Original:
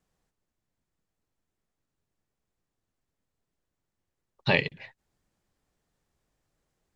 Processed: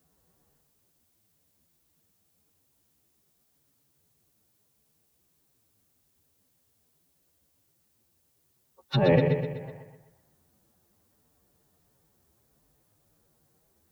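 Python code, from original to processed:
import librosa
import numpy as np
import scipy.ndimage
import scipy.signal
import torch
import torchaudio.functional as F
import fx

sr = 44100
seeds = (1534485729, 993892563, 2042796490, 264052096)

y = fx.wiener(x, sr, points=15)
y = scipy.signal.sosfilt(scipy.signal.butter(2, 59.0, 'highpass', fs=sr, output='sos'), y)
y = fx.hum_notches(y, sr, base_hz=60, count=3)
y = fx.env_lowpass_down(y, sr, base_hz=810.0, full_db=-33.5)
y = fx.low_shelf(y, sr, hz=430.0, db=2.5)
y = fx.over_compress(y, sr, threshold_db=-25.0, ratio=-0.5)
y = fx.stretch_vocoder(y, sr, factor=2.0)
y = fx.dmg_noise_colour(y, sr, seeds[0], colour='blue', level_db=-79.0)
y = fx.echo_feedback(y, sr, ms=125, feedback_pct=50, wet_db=-7.5)
y = F.gain(torch.from_numpy(y), 6.5).numpy()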